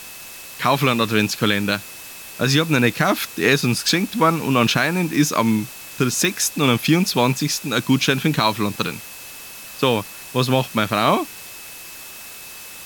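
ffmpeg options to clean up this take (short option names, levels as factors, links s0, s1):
-af "adeclick=t=4,bandreject=f=2600:w=30,afwtdn=0.014"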